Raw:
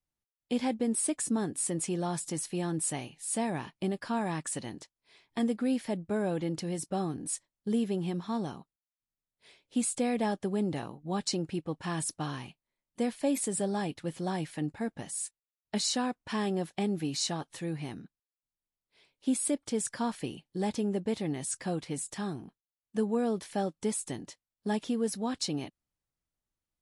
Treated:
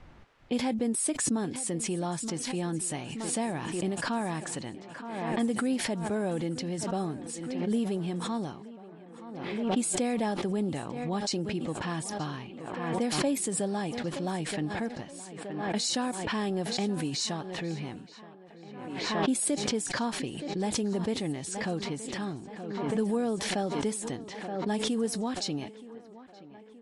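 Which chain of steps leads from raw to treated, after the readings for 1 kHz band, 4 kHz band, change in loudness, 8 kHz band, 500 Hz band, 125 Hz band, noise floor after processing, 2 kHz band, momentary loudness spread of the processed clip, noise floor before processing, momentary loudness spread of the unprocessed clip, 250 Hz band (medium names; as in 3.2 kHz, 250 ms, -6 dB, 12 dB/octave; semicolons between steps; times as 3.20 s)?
+2.5 dB, +4.0 dB, +1.5 dB, +1.0 dB, +1.5 dB, +1.5 dB, -50 dBFS, +5.5 dB, 13 LU, under -85 dBFS, 8 LU, +1.5 dB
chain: thinning echo 923 ms, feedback 69%, high-pass 170 Hz, level -16.5 dB; level-controlled noise filter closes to 2 kHz, open at -25.5 dBFS; swell ahead of each attack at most 36 dB/s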